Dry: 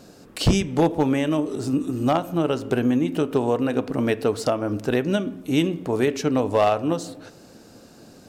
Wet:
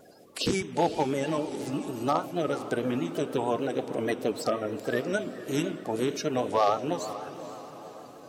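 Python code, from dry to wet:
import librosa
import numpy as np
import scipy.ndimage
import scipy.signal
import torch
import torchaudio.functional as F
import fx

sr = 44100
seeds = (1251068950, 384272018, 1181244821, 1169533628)

y = fx.spec_quant(x, sr, step_db=30)
y = fx.highpass(y, sr, hz=370.0, slope=6)
y = fx.echo_diffused(y, sr, ms=487, feedback_pct=56, wet_db=-13)
y = fx.vibrato(y, sr, rate_hz=6.4, depth_cents=60.0)
y = y * librosa.db_to_amplitude(-3.0)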